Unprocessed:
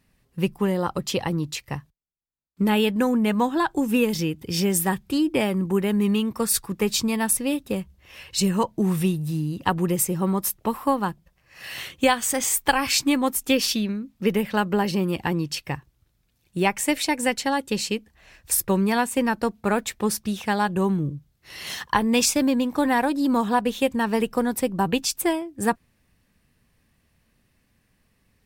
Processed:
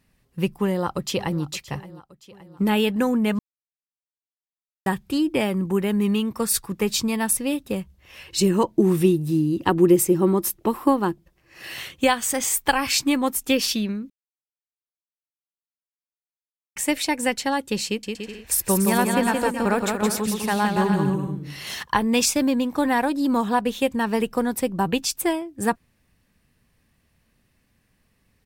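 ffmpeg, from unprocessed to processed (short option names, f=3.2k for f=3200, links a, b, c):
-filter_complex "[0:a]asplit=2[a][b];[b]afade=t=in:st=0.58:d=0.01,afade=t=out:st=1.42:d=0.01,aecho=0:1:570|1140|1710|2280|2850:0.133352|0.0733437|0.040339|0.0221865|0.0122026[c];[a][c]amix=inputs=2:normalize=0,asettb=1/sr,asplit=3[d][e][f];[d]atrim=end=8.264[g];[e]atrim=start=8.26:end=11.75,asetpts=PTS-STARTPTS,afade=t=in:d=0.004:c=qsin,afade=t=out:st=3.486:d=0.004:c=qsin,equalizer=f=340:w=3.1:g=14[h];[f]atrim=start=11.746[i];[g][h]acrossfade=d=0.004:c1=hsin:c2=qsin[j];[j][i]acrossfade=d=0.004:c1=qsin:c2=hsin,asettb=1/sr,asplit=3[k][l][m];[k]atrim=end=17.864[n];[l]atrim=start=17.86:end=21.83,asetpts=PTS-STARTPTS,afade=t=in:d=0.004:c=qsin,afade=t=out:st=3.966:d=0.004:c=qsin,aecho=1:1:170|289|372.3|430.6|471.4:0.631|0.398|0.251|0.158|0.1,atrim=end_sample=175077[o];[m]atrim=start=21.826[p];[n][o]acrossfade=d=0.004:c1=hsin:c2=qsin[q];[q][p]acrossfade=d=0.004:c1=qsin:c2=hsin,asplit=5[r][s][t][u][v];[r]atrim=end=3.39,asetpts=PTS-STARTPTS,afade=t=out:st=3.386:d=0.004:c=hsin[w];[s]atrim=start=3.39:end=4.86,asetpts=PTS-STARTPTS,volume=0[x];[t]atrim=start=4.86:end=14.1,asetpts=PTS-STARTPTS,afade=t=in:d=0.004:c=hsin,afade=t=out:st=9.236:d=0.004:c=hsin[y];[u]atrim=start=14.1:end=16.76,asetpts=PTS-STARTPTS,volume=0[z];[v]atrim=start=16.76,asetpts=PTS-STARTPTS,afade=t=in:d=0.004:c=hsin[aa];[w][x][y][z][aa]concat=n=5:v=0:a=1"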